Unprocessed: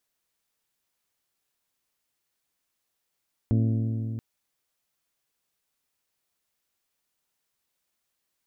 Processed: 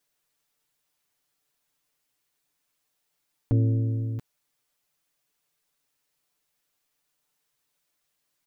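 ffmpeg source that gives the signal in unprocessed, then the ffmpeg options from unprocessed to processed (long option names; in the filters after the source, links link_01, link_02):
-f lavfi -i "aevalsrc='0.106*pow(10,-3*t/3.54)*sin(2*PI*112*t)+0.0596*pow(10,-3*t/2.875)*sin(2*PI*224*t)+0.0335*pow(10,-3*t/2.722)*sin(2*PI*268.8*t)+0.0188*pow(10,-3*t/2.546)*sin(2*PI*336*t)+0.0106*pow(10,-3*t/2.336)*sin(2*PI*448*t)+0.00596*pow(10,-3*t/2.184)*sin(2*PI*560*t)+0.00335*pow(10,-3*t/2.068)*sin(2*PI*672*t)':duration=0.68:sample_rate=44100"
-af "aecho=1:1:6.8:0.85"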